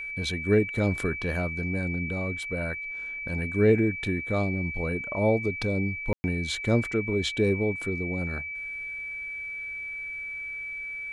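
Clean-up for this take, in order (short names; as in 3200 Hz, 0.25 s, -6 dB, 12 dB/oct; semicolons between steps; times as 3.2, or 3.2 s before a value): notch 2300 Hz, Q 30; room tone fill 6.13–6.24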